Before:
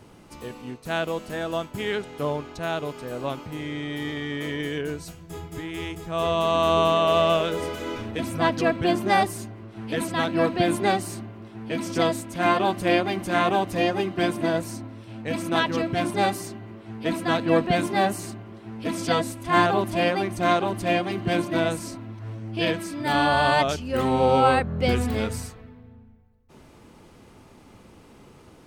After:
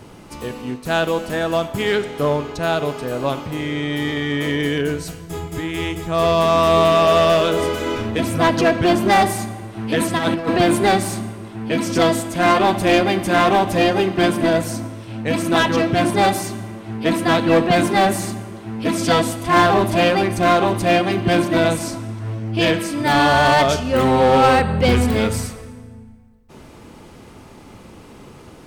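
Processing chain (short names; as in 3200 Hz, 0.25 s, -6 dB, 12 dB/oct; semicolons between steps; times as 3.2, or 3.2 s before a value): Schroeder reverb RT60 1.2 s, combs from 28 ms, DRR 13.5 dB; in parallel at -5 dB: wavefolder -20 dBFS; 10.17–10.6 on the sum: negative-ratio compressor -23 dBFS, ratio -0.5; gain +4.5 dB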